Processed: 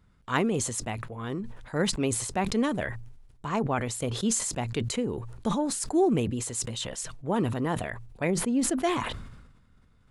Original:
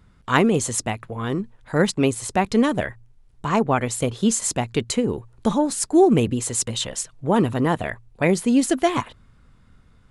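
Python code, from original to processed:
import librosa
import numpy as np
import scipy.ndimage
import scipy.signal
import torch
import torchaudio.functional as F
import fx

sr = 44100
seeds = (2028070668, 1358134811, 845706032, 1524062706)

y = fx.high_shelf(x, sr, hz=2300.0, db=-11.5, at=(8.29, 8.82), fade=0.02)
y = fx.sustainer(y, sr, db_per_s=49.0)
y = y * 10.0 ** (-8.5 / 20.0)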